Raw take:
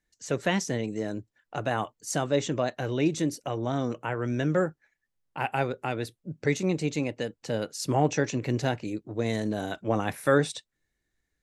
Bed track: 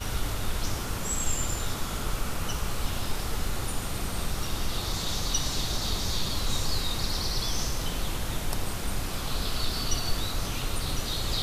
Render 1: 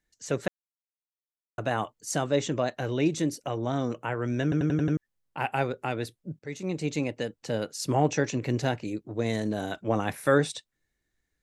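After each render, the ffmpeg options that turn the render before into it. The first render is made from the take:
ffmpeg -i in.wav -filter_complex "[0:a]asplit=10[link_01][link_02][link_03][link_04][link_05][link_06][link_07][link_08][link_09][link_10];[link_01]atrim=end=0.48,asetpts=PTS-STARTPTS,afade=type=out:start_time=0.476:duration=0.004:curve=hsin[link_11];[link_02]atrim=start=0.48:end=1.58,asetpts=PTS-STARTPTS,volume=0[link_12];[link_03]atrim=start=1.58:end=4.522,asetpts=PTS-STARTPTS,afade=type=in:duration=0.004:curve=hsin[link_13];[link_04]atrim=start=4.428:end=4.522[link_14];[link_05]atrim=start=4.428:end=4.522[link_15];[link_06]atrim=start=4.428:end=4.522[link_16];[link_07]atrim=start=4.428:end=4.522[link_17];[link_08]atrim=start=4.428:end=4.522[link_18];[link_09]atrim=start=4.968:end=6.39,asetpts=PTS-STARTPTS,afade=type=out:start_time=1.418:duration=0.004:curve=hsin:silence=0.0841395[link_19];[link_10]atrim=start=6.39,asetpts=PTS-STARTPTS,afade=type=in:duration=0.56:silence=0.0841395[link_20];[link_11][link_12][link_13]concat=n=3:v=0:a=1[link_21];[link_21][link_14]acrossfade=duration=0.004:curve1=hsin:curve2=hsin[link_22];[link_22][link_15]acrossfade=duration=0.004:curve1=hsin:curve2=hsin[link_23];[link_23][link_16]acrossfade=duration=0.004:curve1=hsin:curve2=hsin[link_24];[link_24][link_17]acrossfade=duration=0.004:curve1=hsin:curve2=hsin[link_25];[link_25][link_18]acrossfade=duration=0.004:curve1=hsin:curve2=hsin[link_26];[link_19][link_20]concat=n=2:v=0:a=1[link_27];[link_26][link_27]acrossfade=duration=0.004:curve1=hsin:curve2=hsin" out.wav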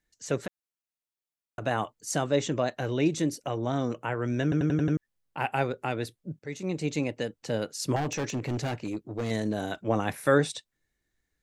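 ffmpeg -i in.wav -filter_complex "[0:a]asettb=1/sr,asplit=3[link_01][link_02][link_03];[link_01]atrim=end=0.434[link_04];[link_02]atrim=start=0.43:end=1.62,asetpts=PTS-STARTPTS,afade=type=in:duration=0.004:curve=qsin,afade=type=out:start_time=1.186:duration=0.004:curve=qsin,acompressor=threshold=-30dB:ratio=6:attack=3.2:release=140:knee=1:detection=peak[link_05];[link_03]atrim=start=1.616[link_06];[link_04][link_05]acrossfade=duration=0.004:curve1=hsin:curve2=qsin[link_07];[link_07][link_06]acrossfade=duration=0.004:curve1=qsin:curve2=hsin,asettb=1/sr,asplit=3[link_08][link_09][link_10];[link_08]atrim=end=7.964[link_11];[link_09]atrim=start=7.96:end=9.31,asetpts=PTS-STARTPTS,afade=type=in:duration=0.004:curve=qsin,afade=type=out:start_time=1.346:duration=0.004:curve=qsin,volume=26dB,asoftclip=hard,volume=-26dB[link_12];[link_10]atrim=start=9.306[link_13];[link_11][link_12]acrossfade=duration=0.004:curve1=hsin:curve2=qsin[link_14];[link_14][link_13]acrossfade=duration=0.004:curve1=qsin:curve2=hsin" out.wav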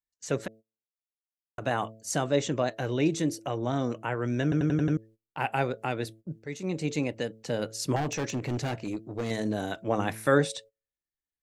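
ffmpeg -i in.wav -af "bandreject=frequency=110.5:width_type=h:width=4,bandreject=frequency=221:width_type=h:width=4,bandreject=frequency=331.5:width_type=h:width=4,bandreject=frequency=442:width_type=h:width=4,bandreject=frequency=552.5:width_type=h:width=4,bandreject=frequency=663:width_type=h:width=4,agate=range=-22dB:threshold=-48dB:ratio=16:detection=peak" out.wav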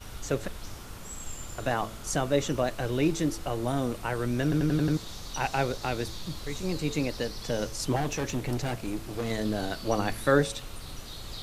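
ffmpeg -i in.wav -i bed.wav -filter_complex "[1:a]volume=-11dB[link_01];[0:a][link_01]amix=inputs=2:normalize=0" out.wav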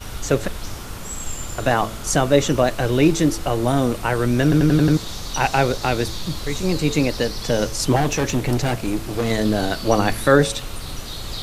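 ffmpeg -i in.wav -af "volume=10dB,alimiter=limit=-3dB:level=0:latency=1" out.wav

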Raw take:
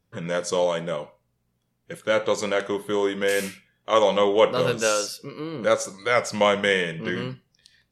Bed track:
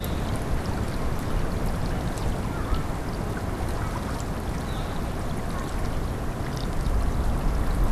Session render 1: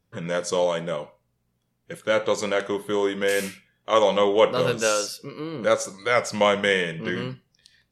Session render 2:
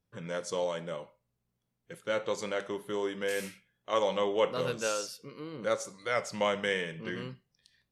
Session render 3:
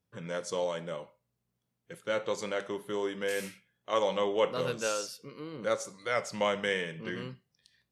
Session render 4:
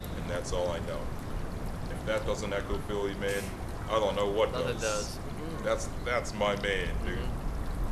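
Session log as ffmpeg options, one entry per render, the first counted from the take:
ffmpeg -i in.wav -af anull out.wav
ffmpeg -i in.wav -af "volume=-9.5dB" out.wav
ffmpeg -i in.wav -af "highpass=60" out.wav
ffmpeg -i in.wav -i bed.wav -filter_complex "[1:a]volume=-9.5dB[link_01];[0:a][link_01]amix=inputs=2:normalize=0" out.wav

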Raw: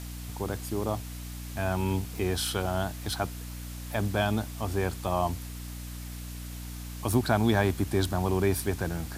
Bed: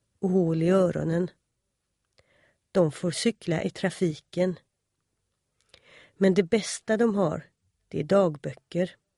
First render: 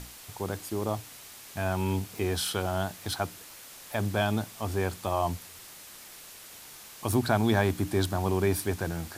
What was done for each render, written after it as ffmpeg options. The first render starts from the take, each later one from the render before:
ffmpeg -i in.wav -af "bandreject=frequency=60:width_type=h:width=6,bandreject=frequency=120:width_type=h:width=6,bandreject=frequency=180:width_type=h:width=6,bandreject=frequency=240:width_type=h:width=6,bandreject=frequency=300:width_type=h:width=6" out.wav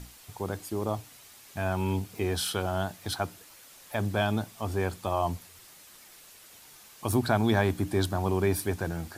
ffmpeg -i in.wav -af "afftdn=noise_reduction=6:noise_floor=-48" out.wav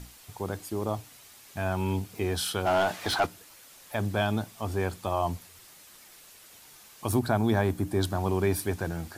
ffmpeg -i in.wav -filter_complex "[0:a]asplit=3[link_01][link_02][link_03];[link_01]afade=type=out:start_time=2.65:duration=0.02[link_04];[link_02]asplit=2[link_05][link_06];[link_06]highpass=frequency=720:poles=1,volume=22dB,asoftclip=type=tanh:threshold=-14.5dB[link_07];[link_05][link_07]amix=inputs=2:normalize=0,lowpass=frequency=2400:poles=1,volume=-6dB,afade=type=in:start_time=2.65:duration=0.02,afade=type=out:start_time=3.25:duration=0.02[link_08];[link_03]afade=type=in:start_time=3.25:duration=0.02[link_09];[link_04][link_08][link_09]amix=inputs=3:normalize=0,asettb=1/sr,asplit=3[link_10][link_11][link_12];[link_10]atrim=end=7.194[link_13];[link_11]atrim=start=7.19:end=8.03,asetpts=PTS-STARTPTS,afade=type=in:duration=0.004:curve=qsin,afade=type=out:start_time=0.836:duration=0.004:curve=qsin,equalizer=frequency=3200:width=0.53:gain=-5[link_14];[link_12]atrim=start=8.026[link_15];[link_13][link_14]acrossfade=duration=0.004:curve1=hsin:curve2=qsin[link_16];[link_16][link_15]acrossfade=duration=0.004:curve1=qsin:curve2=hsin" out.wav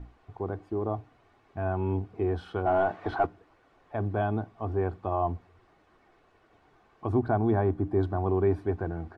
ffmpeg -i in.wav -af "lowpass=1100,aecho=1:1:2.7:0.38" out.wav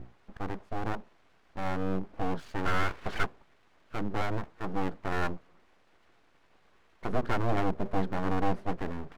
ffmpeg -i in.wav -af "aeval=exprs='abs(val(0))':channel_layout=same" out.wav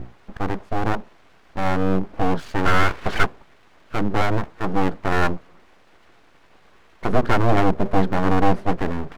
ffmpeg -i in.wav -af "volume=11dB" out.wav

